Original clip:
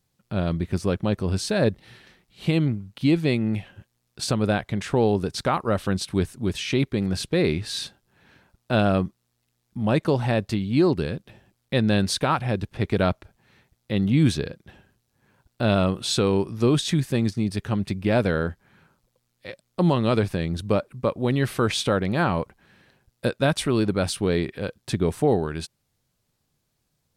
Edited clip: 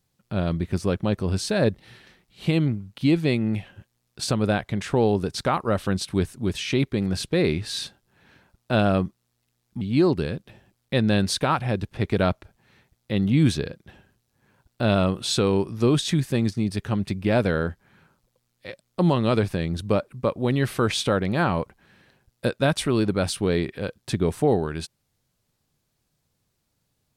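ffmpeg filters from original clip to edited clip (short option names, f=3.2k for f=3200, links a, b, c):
-filter_complex "[0:a]asplit=2[a][b];[a]atrim=end=9.812[c];[b]atrim=start=10.608[d];[c][d]acrossfade=d=0.004:c1=hsin:c2=hsin"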